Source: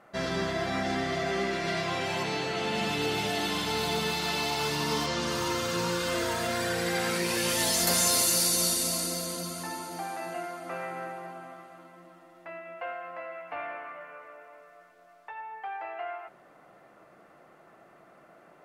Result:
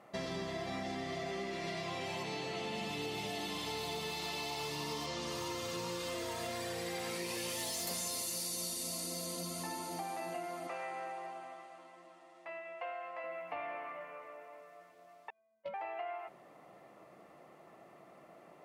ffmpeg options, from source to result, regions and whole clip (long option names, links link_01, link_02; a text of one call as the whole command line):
ffmpeg -i in.wav -filter_complex "[0:a]asettb=1/sr,asplit=3[link_01][link_02][link_03];[link_01]atrim=end=3.574[link_04];[link_02]atrim=start=3.57:end=7.91,asetpts=PTS-STARTPTS,afade=type=in:duration=0.004:curve=qsin,afade=type=out:start_time=4.336:duration=0.004:curve=qsin,asoftclip=type=hard:threshold=-21dB,equalizer=frequency=200:width=4.4:gain=-8.5[link_05];[link_03]atrim=start=7.906[link_06];[link_04][link_05]acrossfade=duration=0.004:curve1=hsin:curve2=qsin[link_07];[link_07][link_06]acrossfade=duration=0.004:curve1=qsin:curve2=hsin,asettb=1/sr,asplit=3[link_08][link_09][link_10];[link_08]atrim=end=10.674[link_11];[link_09]atrim=start=10.67:end=13.24,asetpts=PTS-STARTPTS,afade=type=in:duration=0.004:curve=qsin,afade=type=out:start_time=2.566:duration=0.004:curve=qsin,lowpass=frequency=9400:width=0.5412,lowpass=frequency=9400:width=1.3066,equalizer=frequency=150:width=0.53:gain=-12.5,asplit=2[link_12][link_13];[link_13]adelay=14,volume=-14dB[link_14];[link_12][link_14]amix=inputs=2:normalize=0,atrim=end_sample=113337[link_15];[link_10]atrim=start=13.236[link_16];[link_11][link_15]acrossfade=duration=0.004:curve1=hsin:curve2=qsin[link_17];[link_17][link_16]acrossfade=duration=0.004:curve1=qsin:curve2=hsin,asettb=1/sr,asplit=3[link_18][link_19][link_20];[link_18]atrim=end=15.304[link_21];[link_19]atrim=start=15.3:end=15.74,asetpts=PTS-STARTPTS,afade=type=in:duration=0.004:curve=qsin,afade=type=out:start_time=0.436:duration=0.004:curve=qsin,agate=range=-55dB:threshold=-33dB:ratio=16:release=100:detection=peak,aeval=exprs='0.02*sin(PI/2*7.94*val(0)/0.02)':channel_layout=same,afreqshift=-220[link_22];[link_20]atrim=start=15.736[link_23];[link_21][link_22]acrossfade=duration=0.004:curve1=hsin:curve2=qsin[link_24];[link_24][link_23]acrossfade=duration=0.004:curve1=qsin:curve2=hsin,highpass=65,equalizer=frequency=1500:width=5.6:gain=-12.5,acompressor=threshold=-36dB:ratio=6,volume=-1dB" out.wav